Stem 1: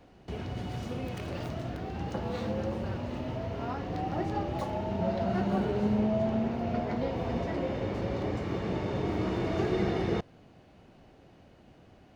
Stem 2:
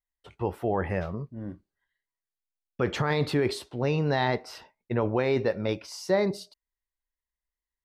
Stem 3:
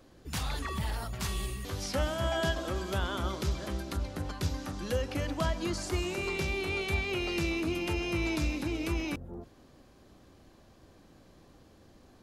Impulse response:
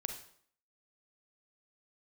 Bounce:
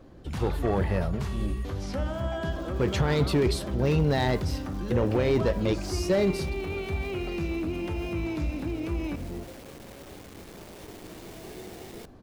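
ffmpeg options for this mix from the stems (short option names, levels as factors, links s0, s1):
-filter_complex "[0:a]highpass=f=390:p=1,equalizer=f=1300:t=o:w=0.4:g=-10,acrusher=bits=5:mix=0:aa=0.000001,adelay=1850,volume=0.211,asplit=2[s0][s1];[s1]volume=0.133[s2];[1:a]equalizer=f=1200:t=o:w=0.88:g=-7.5,volume=1.06[s3];[2:a]lowpass=f=1300:p=1,volume=1.41,asplit=2[s4][s5];[s5]volume=0.422[s6];[s0][s4]amix=inputs=2:normalize=0,alimiter=level_in=2.82:limit=0.0631:level=0:latency=1:release=59,volume=0.355,volume=1[s7];[3:a]atrim=start_sample=2205[s8];[s2][s6]amix=inputs=2:normalize=0[s9];[s9][s8]afir=irnorm=-1:irlink=0[s10];[s3][s7][s10]amix=inputs=3:normalize=0,highshelf=f=6400:g=5.5,asoftclip=type=hard:threshold=0.106,lowshelf=f=350:g=3.5"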